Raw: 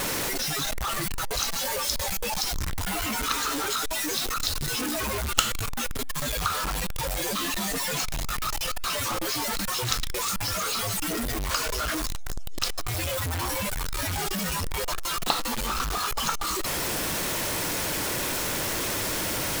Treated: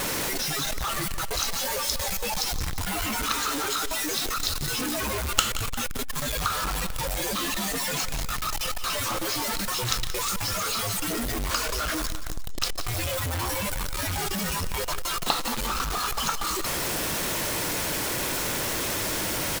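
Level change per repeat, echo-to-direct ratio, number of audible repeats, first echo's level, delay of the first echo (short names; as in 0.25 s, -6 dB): -5.5 dB, -12.0 dB, 2, -13.0 dB, 0.176 s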